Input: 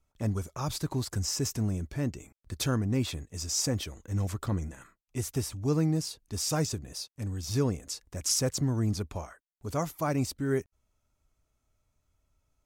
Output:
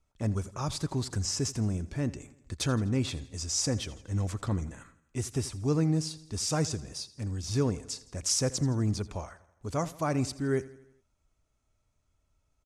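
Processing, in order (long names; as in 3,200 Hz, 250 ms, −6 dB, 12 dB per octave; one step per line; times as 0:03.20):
low-pass filter 10,000 Hz 24 dB per octave
on a send: repeating echo 83 ms, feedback 54%, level −18.5 dB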